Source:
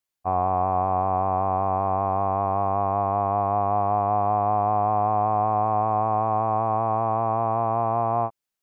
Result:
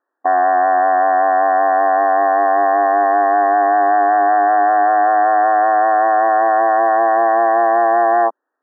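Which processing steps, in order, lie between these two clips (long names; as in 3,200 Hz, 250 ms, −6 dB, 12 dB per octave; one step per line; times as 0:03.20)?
in parallel at +1.5 dB: brickwall limiter −21 dBFS, peak gain reduction 8.5 dB
on the sum: sine wavefolder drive 8 dB, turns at −8.5 dBFS
linear-phase brick-wall band-pass 250–1,900 Hz
high-frequency loss of the air 340 metres
level +1.5 dB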